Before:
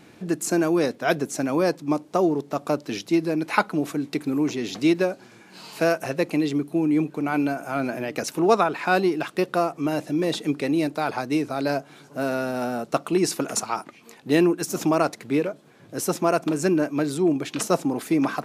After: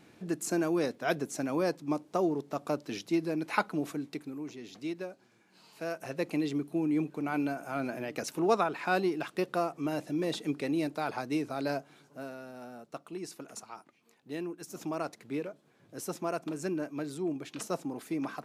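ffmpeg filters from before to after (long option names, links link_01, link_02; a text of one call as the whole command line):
ffmpeg -i in.wav -af "volume=7.5dB,afade=type=out:start_time=3.88:duration=0.47:silence=0.354813,afade=type=in:start_time=5.82:duration=0.48:silence=0.354813,afade=type=out:start_time=11.71:duration=0.64:silence=0.281838,afade=type=in:start_time=14.45:duration=0.76:silence=0.473151" out.wav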